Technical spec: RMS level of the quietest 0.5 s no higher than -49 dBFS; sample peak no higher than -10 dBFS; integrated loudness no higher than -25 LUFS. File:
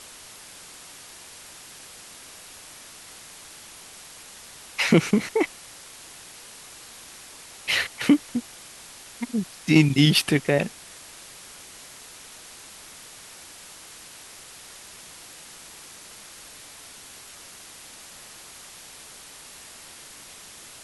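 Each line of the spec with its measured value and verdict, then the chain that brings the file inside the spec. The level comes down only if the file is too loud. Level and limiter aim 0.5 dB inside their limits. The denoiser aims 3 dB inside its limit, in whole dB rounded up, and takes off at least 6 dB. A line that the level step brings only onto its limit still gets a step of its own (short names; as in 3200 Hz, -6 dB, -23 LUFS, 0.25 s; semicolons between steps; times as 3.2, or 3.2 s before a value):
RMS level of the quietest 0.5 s -45 dBFS: fail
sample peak -5.5 dBFS: fail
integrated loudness -22.5 LUFS: fail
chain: denoiser 6 dB, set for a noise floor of -45 dBFS; gain -3 dB; limiter -10.5 dBFS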